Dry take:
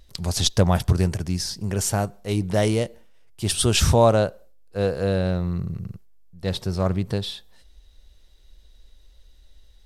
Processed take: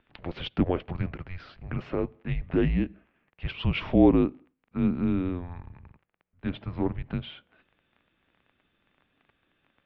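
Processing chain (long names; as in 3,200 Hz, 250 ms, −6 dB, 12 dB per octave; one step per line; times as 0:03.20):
surface crackle 14 per second −39 dBFS
single-sideband voice off tune −270 Hz 280–2,900 Hz
dynamic equaliser 1,300 Hz, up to −8 dB, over −43 dBFS, Q 0.8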